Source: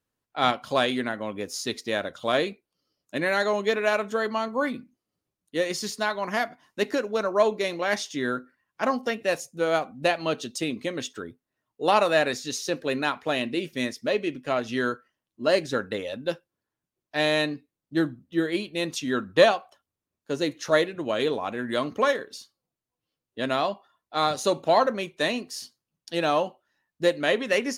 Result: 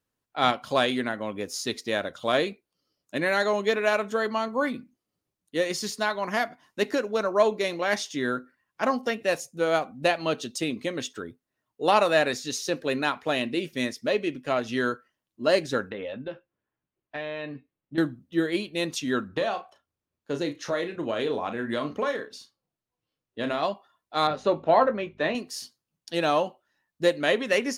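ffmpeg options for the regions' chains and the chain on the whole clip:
-filter_complex "[0:a]asettb=1/sr,asplit=3[a][b][c];[a]atrim=end=15.904[d];[b]atrim=start=15.9:end=17.98,asetpts=PTS-STARTPTS,afade=t=in:d=0.004:c=qsin,afade=t=out:st=2.076:d=0.004:c=qsin,lowpass=f=3.1k:w=0.5412,lowpass=f=3.1k:w=1.3066,acompressor=threshold=-31dB:ratio=6:attack=3.2:release=140:knee=1:detection=peak,asplit=2[e][f];[f]adelay=15,volume=-9.5dB[g];[e][g]amix=inputs=2:normalize=0,atrim=end_sample=91728[h];[c]atrim=start=17.976[i];[d][h]acrossfade=d=0.004:c1=hsin:c2=qsin[j];[j][i]acrossfade=d=0.004:c1=qsin:c2=hsin,asettb=1/sr,asplit=3[k][l][m];[k]atrim=end=19.284[n];[l]atrim=start=19.28:end=23.63,asetpts=PTS-STARTPTS,afade=t=in:d=0.004:c=qsin,afade=t=out:st=4.346:d=0.004:c=qsin,acompressor=threshold=-23dB:ratio=6:attack=3.2:release=140:knee=1:detection=peak,highshelf=f=6.1k:g=-8.5,asplit=2[o][p];[p]adelay=35,volume=-8.5dB[q];[o][q]amix=inputs=2:normalize=0,atrim=end_sample=191835[r];[m]atrim=start=23.626[s];[n][r]acrossfade=d=0.004:c1=hsin:c2=qsin[t];[t][s]acrossfade=d=0.004:c1=qsin:c2=hsin,asettb=1/sr,asplit=3[u][v][w];[u]atrim=end=24.274[x];[v]atrim=start=24.27:end=25.35,asetpts=PTS-STARTPTS,afade=t=in:d=0.004:c=qsin,afade=t=out:st=1.076:d=0.004:c=qsin,asplit=2[y][z];[z]adelay=19,volume=-10dB[aa];[y][aa]amix=inputs=2:normalize=0,atrim=end_sample=47628,aeval=exprs='val(0)+0.00316*(sin(2*PI*50*n/s)+sin(2*PI*2*50*n/s)/2+sin(2*PI*3*50*n/s)/3+sin(2*PI*4*50*n/s)/4+sin(2*PI*5*50*n/s)/5)':c=same,highpass=120,lowpass=2.3k[ab];[w]atrim=start=25.346[ac];[x][ab]acrossfade=d=0.004:c1=hsin:c2=qsin[ad];[ad][ac]acrossfade=d=0.004:c1=qsin:c2=hsin"

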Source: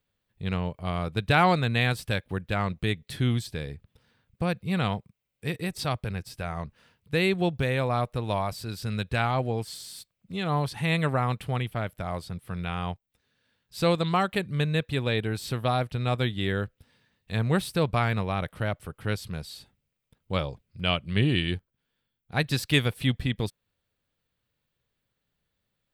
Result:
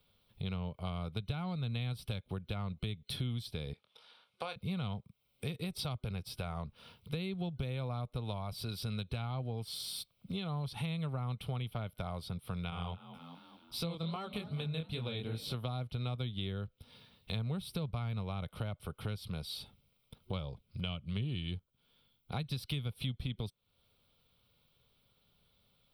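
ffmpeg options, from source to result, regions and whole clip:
-filter_complex "[0:a]asettb=1/sr,asplit=3[a][b][c];[a]atrim=end=3.734[d];[b]atrim=start=3.73:end=4.56,asetpts=PTS-STARTPTS,afade=t=in:d=0.004:c=qsin,afade=t=out:st=0.826:d=0.004:c=qsin,highpass=670,lowpass=8k,asplit=2[e][f];[f]adelay=25,volume=-9dB[g];[e][g]amix=inputs=2:normalize=0,atrim=end_sample=36603[h];[c]atrim=start=4.556[i];[d][h]acrossfade=d=0.004:c1=hsin:c2=qsin[j];[j][i]acrossfade=d=0.004:c1=qsin:c2=hsin,asettb=1/sr,asplit=3[k][l][m];[k]atrim=end=12.704[n];[l]atrim=start=12.7:end=15.54,asetpts=PTS-STARTPTS,afade=t=in:d=0.004:c=qsin,afade=t=out:st=2.836:d=0.004:c=qsin,asplit=5[o][p][q][r][s];[p]adelay=215,afreqshift=38,volume=-20.5dB[t];[q]adelay=430,afreqshift=76,volume=-25.9dB[u];[r]adelay=645,afreqshift=114,volume=-31.2dB[v];[s]adelay=860,afreqshift=152,volume=-36.6dB[w];[o][t][u][v][w]amix=inputs=5:normalize=0,atrim=end_sample=125244,flanger=delay=17.5:depth=7.2:speed=2.6[x];[m]atrim=start=15.536[y];[n][x]acrossfade=d=0.004:c1=hsin:c2=qsin[z];[z][y]acrossfade=d=0.004:c1=qsin:c2=hsin,acrossover=split=210[aa][ab];[ab]acompressor=threshold=-33dB:ratio=6[ac];[aa][ac]amix=inputs=2:normalize=0,superequalizer=6b=0.631:11b=0.316:13b=1.78:15b=0.282,acompressor=threshold=-48dB:ratio=3,volume=7.5dB"

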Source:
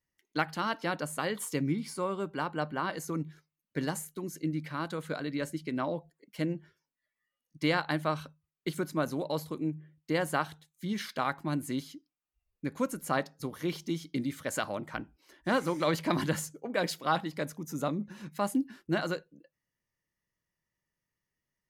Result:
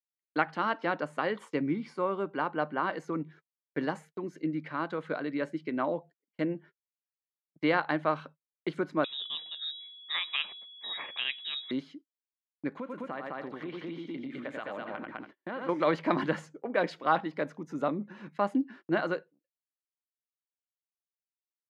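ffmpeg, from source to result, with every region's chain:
-filter_complex "[0:a]asettb=1/sr,asplit=3[a][b][c];[a]atrim=end=9.044[d];[b]atrim=start=9.04:end=11.71,asetpts=PTS-STARTPTS,afade=t=in:d=0.004:c=qsin,afade=t=out:st=2.666:d=0.004:c=qsin,aeval=exprs='val(0)+0.0112*sin(2*PI*630*n/s)':c=same,lowpass=f=3.4k:t=q:w=0.5098,lowpass=f=3.4k:t=q:w=0.6013,lowpass=f=3.4k:t=q:w=0.9,lowpass=f=3.4k:t=q:w=2.563,afreqshift=-4000[e];[c]atrim=start=11.706[f];[d][e]acrossfade=d=0.004:c1=hsin:c2=qsin[g];[g][f]acrossfade=d=0.004:c1=qsin:c2=hsin,asettb=1/sr,asplit=3[h][i][j];[h]atrim=end=12.774[k];[i]atrim=start=12.77:end=15.69,asetpts=PTS-STARTPTS,afade=t=in:d=0.004:c=qsin,afade=t=out:st=2.916:d=0.004:c=qsin,highshelf=f=4.4k:t=q:w=1.5:g=-7,aecho=1:1:89|206|282:0.447|0.631|0.141,atrim=end_sample=128772,acompressor=threshold=-35dB:ratio=8:attack=3.2:release=140:knee=1:detection=peak[l];[j]atrim=start=15.686[m];[k][l]acrossfade=d=0.004:c1=hsin:c2=qsin[n];[n][m]acrossfade=d=0.004:c1=qsin:c2=hsin,lowpass=2.3k,agate=range=-33dB:threshold=-50dB:ratio=16:detection=peak,highpass=240,volume=3dB"

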